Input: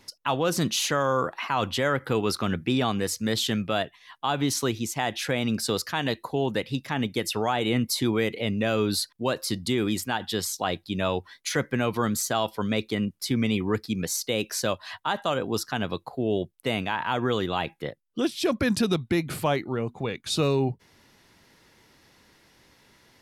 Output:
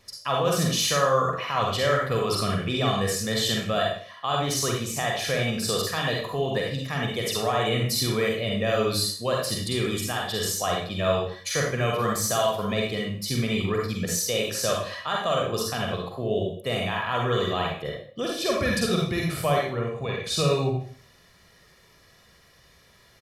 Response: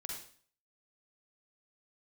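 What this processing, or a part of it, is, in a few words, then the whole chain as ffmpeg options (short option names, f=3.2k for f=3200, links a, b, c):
microphone above a desk: -filter_complex "[0:a]aecho=1:1:1.7:0.58[a];[1:a]atrim=start_sample=2205[b];[a][b]afir=irnorm=-1:irlink=0,volume=2.5dB"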